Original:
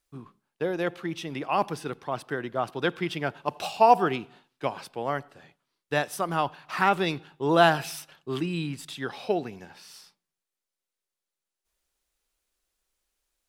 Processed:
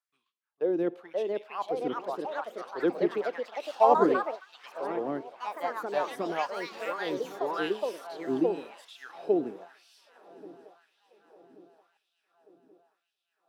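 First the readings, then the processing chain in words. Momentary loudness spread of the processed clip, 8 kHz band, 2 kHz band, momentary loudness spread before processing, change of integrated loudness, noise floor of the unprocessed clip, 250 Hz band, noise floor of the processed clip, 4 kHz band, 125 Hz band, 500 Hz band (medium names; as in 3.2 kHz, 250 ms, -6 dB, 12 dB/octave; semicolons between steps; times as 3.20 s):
17 LU, under -10 dB, -8.0 dB, 15 LU, -3.0 dB, under -85 dBFS, -1.0 dB, -83 dBFS, -9.5 dB, -14.0 dB, -0.5 dB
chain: tilt shelf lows +9 dB, about 660 Hz; multi-head delay 226 ms, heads second and third, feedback 69%, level -19 dB; LFO high-pass sine 0.93 Hz 280–3300 Hz; ever faster or slower copies 627 ms, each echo +3 st, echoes 3; trim -8 dB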